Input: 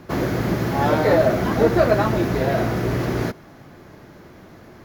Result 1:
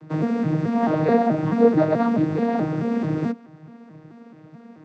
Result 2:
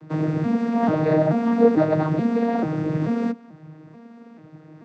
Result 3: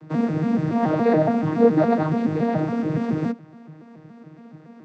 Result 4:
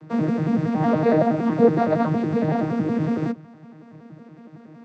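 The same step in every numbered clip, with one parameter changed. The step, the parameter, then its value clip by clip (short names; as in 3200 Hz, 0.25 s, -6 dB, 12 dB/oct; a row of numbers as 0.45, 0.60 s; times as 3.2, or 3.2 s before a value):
arpeggiated vocoder, a note every: 216, 437, 141, 93 ms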